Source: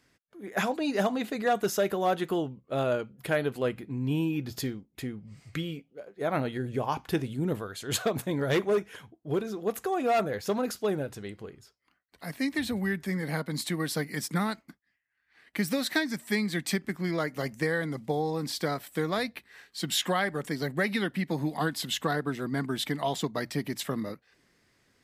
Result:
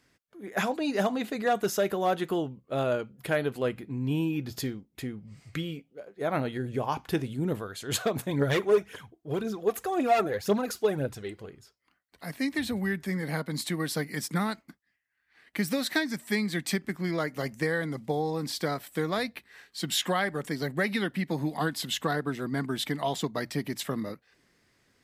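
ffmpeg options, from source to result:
-filter_complex "[0:a]asplit=3[s0][s1][s2];[s0]afade=t=out:st=8.29:d=0.02[s3];[s1]aphaser=in_gain=1:out_gain=1:delay=3:decay=0.5:speed=1.9:type=triangular,afade=t=in:st=8.29:d=0.02,afade=t=out:st=11.46:d=0.02[s4];[s2]afade=t=in:st=11.46:d=0.02[s5];[s3][s4][s5]amix=inputs=3:normalize=0"

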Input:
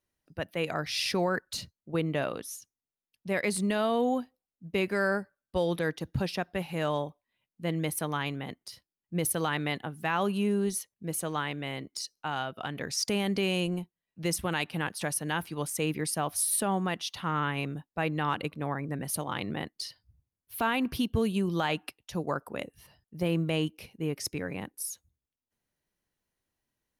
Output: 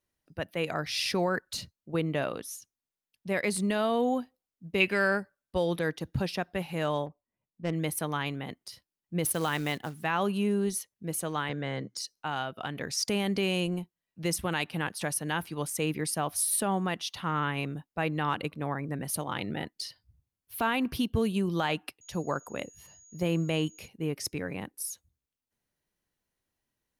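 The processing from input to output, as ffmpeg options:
-filter_complex "[0:a]asettb=1/sr,asplit=3[s0][s1][s2];[s0]atrim=end=4.804[s3];[s1]atrim=start=4.8:end=5.2,asetpts=PTS-STARTPTS,afade=t=in:d=0.004:c=qsin,afade=t=out:st=0.396:d=0.004:c=qsin,equalizer=f=2800:t=o:w=0.77:g=14[s4];[s2]atrim=start=5.196[s5];[s3][s4]acrossfade=d=0.004:c1=hsin:c2=qsin[s6];[s6][s5]acrossfade=d=0.004:c1=qsin:c2=hsin,asettb=1/sr,asplit=3[s7][s8][s9];[s7]atrim=end=7.064[s10];[s8]atrim=start=7.06:end=7.73,asetpts=PTS-STARTPTS,afade=t=in:d=0.004:c=qsin,afade=t=out:st=0.666:d=0.004:c=qsin,adynamicsmooth=sensitivity=4.5:basefreq=930[s11];[s9]atrim=start=7.726[s12];[s10][s11]acrossfade=d=0.004:c1=hsin:c2=qsin[s13];[s13][s12]acrossfade=d=0.004:c1=qsin:c2=hsin,asettb=1/sr,asplit=3[s14][s15][s16];[s14]atrim=end=9.244[s17];[s15]atrim=start=9.24:end=10.04,asetpts=PTS-STARTPTS,afade=t=in:d=0.004:c=qsin,afade=t=out:st=0.796:d=0.004:c=qsin,acrusher=bits=4:mode=log:mix=0:aa=0.000001[s18];[s16]atrim=start=10.036[s19];[s17][s18]acrossfade=d=0.004:c1=hsin:c2=qsin[s20];[s20][s19]acrossfade=d=0.004:c1=qsin:c2=hsin,asettb=1/sr,asplit=3[s21][s22][s23];[s21]atrim=end=11.494[s24];[s22]atrim=start=11.49:end=11.97,asetpts=PTS-STARTPTS,afade=t=in:d=0.004:c=qsin,afade=t=out:st=0.476:d=0.004:c=qsin,highpass=110,equalizer=f=120:t=q:w=4:g=10,equalizer=f=200:t=q:w=4:g=8,equalizer=f=490:t=q:w=4:g=8,equalizer=f=1600:t=q:w=4:g=7,equalizer=f=2600:t=q:w=4:g=-8,equalizer=f=6200:t=q:w=4:g=6,lowpass=f=7300:w=0.5412,lowpass=f=7300:w=1.3066[s25];[s23]atrim=start=11.966[s26];[s24][s25]acrossfade=d=0.004:c1=hsin:c2=qsin[s27];[s27][s26]acrossfade=d=0.004:c1=qsin:c2=hsin,asettb=1/sr,asplit=3[s28][s29][s30];[s28]atrim=end=19.384[s31];[s29]atrim=start=19.38:end=19.83,asetpts=PTS-STARTPTS,afade=t=in:d=0.004:c=qsin,afade=t=out:st=0.446:d=0.004:c=qsin,asuperstop=centerf=1100:order=20:qfactor=4.9[s32];[s30]atrim=start=19.826[s33];[s31][s32]acrossfade=d=0.004:c1=hsin:c2=qsin[s34];[s34][s33]acrossfade=d=0.004:c1=qsin:c2=hsin,asettb=1/sr,asplit=3[s35][s36][s37];[s35]atrim=end=22.014[s38];[s36]atrim=start=22.01:end=23.88,asetpts=PTS-STARTPTS,afade=t=in:d=0.004:c=qsin,afade=t=out:st=1.866:d=0.004:c=qsin,aeval=exprs='val(0)+0.002*sin(2*PI*6700*n/s)':c=same[s39];[s37]atrim=start=23.876[s40];[s38][s39]acrossfade=d=0.004:c1=hsin:c2=qsin[s41];[s41][s40]acrossfade=d=0.004:c1=qsin:c2=hsin"

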